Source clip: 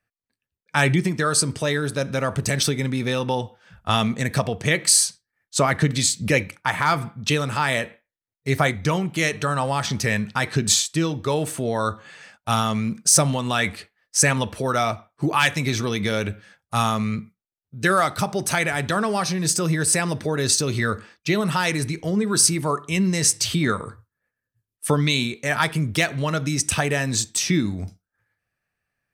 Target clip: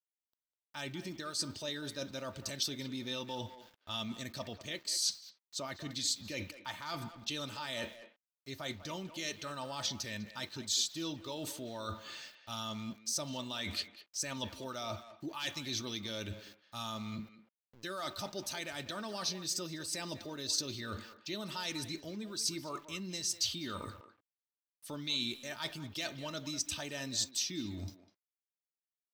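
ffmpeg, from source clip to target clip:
-filter_complex "[0:a]areverse,acompressor=threshold=0.0251:ratio=12,areverse,highshelf=f=2800:t=q:w=1.5:g=9.5,aecho=1:1:3.3:0.51,aeval=exprs='val(0)*gte(abs(val(0)),0.00355)':c=same,equalizer=f=9400:t=o:w=0.64:g=-14.5,asplit=2[s0][s1];[s1]adelay=200,highpass=300,lowpass=3400,asoftclip=type=hard:threshold=0.0251,volume=0.282[s2];[s0][s2]amix=inputs=2:normalize=0,volume=0.501"

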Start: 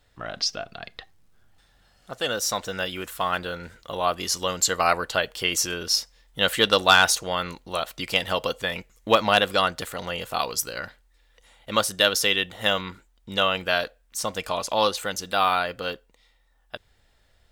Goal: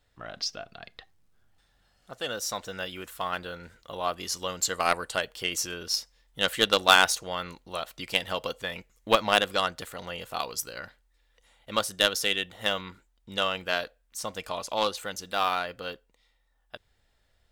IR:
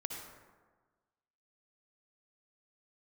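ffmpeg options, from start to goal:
-filter_complex "[0:a]aeval=exprs='0.631*(cos(1*acos(clip(val(0)/0.631,-1,1)))-cos(1*PI/2))+0.112*(cos(3*acos(clip(val(0)/0.631,-1,1)))-cos(3*PI/2))':c=same,asettb=1/sr,asplit=3[s0][s1][s2];[s0]atrim=end=4.734[s3];[s1]atrim=start=4.73:end=5.25,asetpts=PTS-STARTPTS,afade=t=in:d=0.004:c=qsin,afade=t=out:st=0.516:d=0.004:c=qsin,equalizer=f=8800:w=2.8:g=13.5[s4];[s2]atrim=start=5.246[s5];[s3][s4]acrossfade=d=0.004:c1=hsin:c2=qsin[s6];[s6][s5]acrossfade=d=0.004:c1=qsin:c2=hsin"

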